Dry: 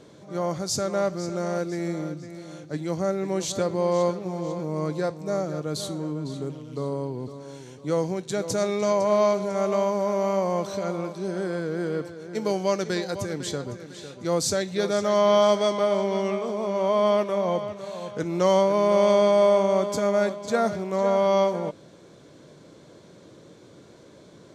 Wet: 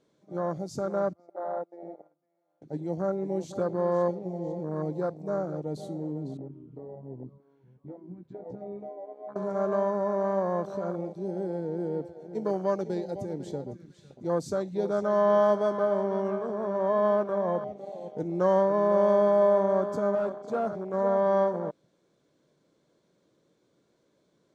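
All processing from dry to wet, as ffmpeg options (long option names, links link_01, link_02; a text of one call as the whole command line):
ffmpeg -i in.wav -filter_complex "[0:a]asettb=1/sr,asplit=3[link_01][link_02][link_03];[link_01]atrim=end=1.134[link_04];[link_02]atrim=start=1.13:end=2.62,asetpts=PTS-STARTPTS,afade=type=in:duration=0.004:curve=qsin,afade=type=out:start_time=1.486:duration=0.004:curve=qsin,agate=range=-11dB:threshold=-30dB:ratio=16:release=100:detection=peak,bandpass=frequency=760:width_type=q:width=3.1,acontrast=36[link_05];[link_03]atrim=start=2.616[link_06];[link_04][link_05]acrossfade=duration=0.004:curve1=hsin:curve2=qsin[link_07];[link_07][link_06]acrossfade=duration=0.004:curve1=qsin:curve2=hsin,asettb=1/sr,asplit=3[link_08][link_09][link_10];[link_08]atrim=end=6.374[link_11];[link_09]atrim=start=6.37:end=9.36,asetpts=PTS-STARTPTS,afade=type=in:duration=0.004:curve=qsin,afade=type=out:start_time=2.986:duration=0.004:curve=qsin,lowpass=1600,acompressor=threshold=-29dB:ratio=8:attack=3.2:release=140:knee=1:detection=peak,flanger=delay=15:depth=2.2:speed=1.3[link_12];[link_10]atrim=start=9.356[link_13];[link_11][link_12]acrossfade=duration=0.004:curve1=hsin:curve2=qsin[link_14];[link_14][link_13]acrossfade=duration=0.004:curve1=qsin:curve2=hsin,asettb=1/sr,asplit=3[link_15][link_16][link_17];[link_15]atrim=end=20.154[link_18];[link_16]atrim=start=20.15:end=20.94,asetpts=PTS-STARTPTS,afade=type=in:duration=0.004:curve=qsin,afade=type=out:start_time=0.786:duration=0.004:curve=qsin,volume=20.5dB,asoftclip=hard,volume=-20.5dB,bass=frequency=250:gain=-4,treble=frequency=4000:gain=-2[link_19];[link_17]atrim=start=20.936[link_20];[link_18][link_19]acrossfade=duration=0.004:curve1=hsin:curve2=qsin[link_21];[link_21][link_20]acrossfade=duration=0.004:curve1=qsin:curve2=hsin,afwtdn=0.0355,equalizer=frequency=97:width_type=o:width=0.52:gain=-8.5,volume=-3dB" out.wav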